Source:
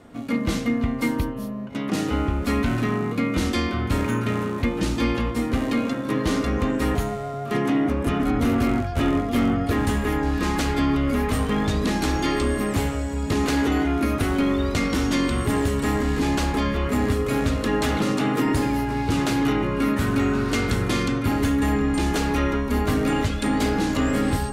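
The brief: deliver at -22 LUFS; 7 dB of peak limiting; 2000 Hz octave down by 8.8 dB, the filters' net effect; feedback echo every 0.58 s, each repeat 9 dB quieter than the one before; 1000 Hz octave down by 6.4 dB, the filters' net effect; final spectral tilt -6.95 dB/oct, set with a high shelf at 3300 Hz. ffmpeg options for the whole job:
-af "equalizer=f=1k:t=o:g=-6,equalizer=f=2k:t=o:g=-8,highshelf=f=3.3k:g=-3.5,alimiter=limit=-21dB:level=0:latency=1,aecho=1:1:580|1160|1740|2320:0.355|0.124|0.0435|0.0152,volume=6.5dB"

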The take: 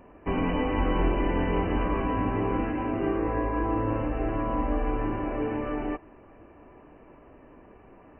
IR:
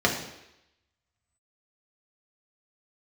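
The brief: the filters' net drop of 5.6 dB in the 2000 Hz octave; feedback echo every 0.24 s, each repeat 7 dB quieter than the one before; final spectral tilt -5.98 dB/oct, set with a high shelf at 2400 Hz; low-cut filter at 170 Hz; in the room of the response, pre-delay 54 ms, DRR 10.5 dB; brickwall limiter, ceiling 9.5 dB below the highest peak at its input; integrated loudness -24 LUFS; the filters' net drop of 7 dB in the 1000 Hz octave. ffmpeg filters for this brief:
-filter_complex "[0:a]highpass=170,equalizer=f=1k:t=o:g=-7.5,equalizer=f=2k:t=o:g=-7,highshelf=f=2.4k:g=5,alimiter=level_in=2.5dB:limit=-24dB:level=0:latency=1,volume=-2.5dB,aecho=1:1:240|480|720|960|1200:0.447|0.201|0.0905|0.0407|0.0183,asplit=2[a][b];[1:a]atrim=start_sample=2205,adelay=54[c];[b][c]afir=irnorm=-1:irlink=0,volume=-26dB[d];[a][d]amix=inputs=2:normalize=0,volume=9.5dB"

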